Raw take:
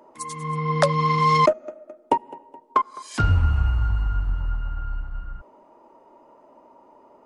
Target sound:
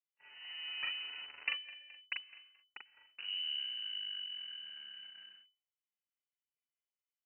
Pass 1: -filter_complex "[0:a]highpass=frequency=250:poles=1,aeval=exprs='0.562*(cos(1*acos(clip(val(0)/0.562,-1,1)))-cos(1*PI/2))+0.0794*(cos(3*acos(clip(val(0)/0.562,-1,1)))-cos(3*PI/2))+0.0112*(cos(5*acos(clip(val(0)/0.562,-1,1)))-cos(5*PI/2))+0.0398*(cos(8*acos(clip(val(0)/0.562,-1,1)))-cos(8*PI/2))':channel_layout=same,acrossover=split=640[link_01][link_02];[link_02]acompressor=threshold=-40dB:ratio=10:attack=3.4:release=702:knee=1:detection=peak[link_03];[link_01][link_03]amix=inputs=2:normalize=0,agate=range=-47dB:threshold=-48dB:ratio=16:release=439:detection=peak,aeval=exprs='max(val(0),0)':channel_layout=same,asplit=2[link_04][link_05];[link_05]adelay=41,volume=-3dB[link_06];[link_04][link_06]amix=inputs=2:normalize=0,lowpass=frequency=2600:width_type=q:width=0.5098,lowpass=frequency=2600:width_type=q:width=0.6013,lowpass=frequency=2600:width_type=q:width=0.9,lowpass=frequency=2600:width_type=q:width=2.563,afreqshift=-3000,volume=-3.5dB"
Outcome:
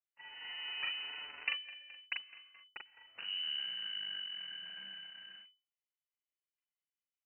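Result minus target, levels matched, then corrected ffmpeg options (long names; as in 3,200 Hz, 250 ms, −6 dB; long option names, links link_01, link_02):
downward compressor: peak gain reduction −10.5 dB
-filter_complex "[0:a]highpass=frequency=250:poles=1,aeval=exprs='0.562*(cos(1*acos(clip(val(0)/0.562,-1,1)))-cos(1*PI/2))+0.0794*(cos(3*acos(clip(val(0)/0.562,-1,1)))-cos(3*PI/2))+0.0112*(cos(5*acos(clip(val(0)/0.562,-1,1)))-cos(5*PI/2))+0.0398*(cos(8*acos(clip(val(0)/0.562,-1,1)))-cos(8*PI/2))':channel_layout=same,acrossover=split=640[link_01][link_02];[link_02]acompressor=threshold=-51.5dB:ratio=10:attack=3.4:release=702:knee=1:detection=peak[link_03];[link_01][link_03]amix=inputs=2:normalize=0,agate=range=-47dB:threshold=-48dB:ratio=16:release=439:detection=peak,aeval=exprs='max(val(0),0)':channel_layout=same,asplit=2[link_04][link_05];[link_05]adelay=41,volume=-3dB[link_06];[link_04][link_06]amix=inputs=2:normalize=0,lowpass=frequency=2600:width_type=q:width=0.5098,lowpass=frequency=2600:width_type=q:width=0.6013,lowpass=frequency=2600:width_type=q:width=0.9,lowpass=frequency=2600:width_type=q:width=2.563,afreqshift=-3000,volume=-3.5dB"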